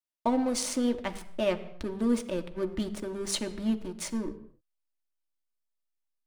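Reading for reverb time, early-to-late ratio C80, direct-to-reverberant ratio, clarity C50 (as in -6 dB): 0.85 s, 15.5 dB, 5.0 dB, 14.5 dB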